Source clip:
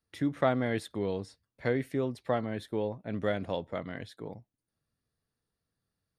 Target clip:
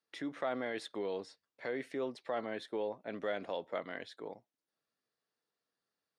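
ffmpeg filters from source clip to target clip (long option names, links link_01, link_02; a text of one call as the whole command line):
ffmpeg -i in.wav -af "alimiter=limit=-24dB:level=0:latency=1:release=45,highpass=380,lowpass=6600" out.wav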